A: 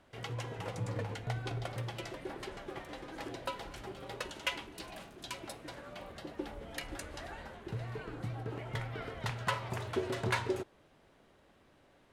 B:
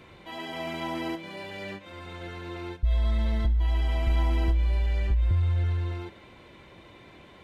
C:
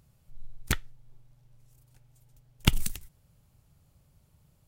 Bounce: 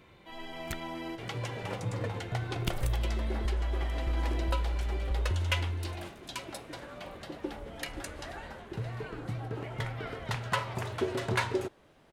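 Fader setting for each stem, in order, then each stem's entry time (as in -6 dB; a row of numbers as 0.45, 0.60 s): +3.0, -7.0, -11.0 dB; 1.05, 0.00, 0.00 s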